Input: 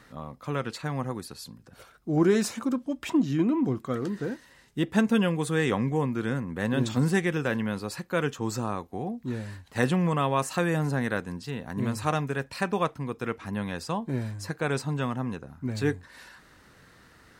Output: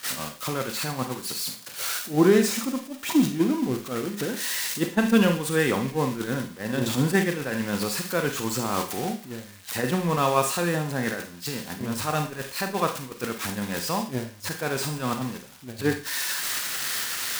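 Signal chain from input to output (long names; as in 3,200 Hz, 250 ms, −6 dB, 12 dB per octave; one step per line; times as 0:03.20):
spike at every zero crossing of −21.5 dBFS
low-shelf EQ 98 Hz −11 dB
delay with a high-pass on its return 73 ms, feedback 61%, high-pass 2,400 Hz, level −8.5 dB
in parallel at +2 dB: compressor whose output falls as the input rises −33 dBFS, ratio −0.5
on the sum: brickwall limiter −13 dBFS, peak gain reduction 5 dB
noise gate −23 dBFS, range −20 dB
high-shelf EQ 5,800 Hz −10 dB
on a send at −6.5 dB: convolution reverb RT60 0.35 s, pre-delay 31 ms
on the sum: level +5 dB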